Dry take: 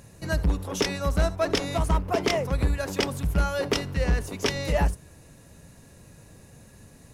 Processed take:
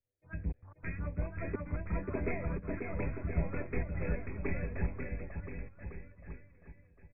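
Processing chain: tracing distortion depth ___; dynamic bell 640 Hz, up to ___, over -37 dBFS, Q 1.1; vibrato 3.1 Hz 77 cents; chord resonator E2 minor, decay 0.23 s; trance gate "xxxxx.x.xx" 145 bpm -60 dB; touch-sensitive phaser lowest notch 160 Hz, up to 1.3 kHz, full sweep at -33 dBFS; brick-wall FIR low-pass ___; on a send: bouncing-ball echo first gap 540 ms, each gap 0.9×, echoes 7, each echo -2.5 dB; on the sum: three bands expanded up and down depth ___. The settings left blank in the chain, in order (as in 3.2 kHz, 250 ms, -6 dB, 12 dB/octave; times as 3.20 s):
0.19 ms, -4 dB, 2.6 kHz, 100%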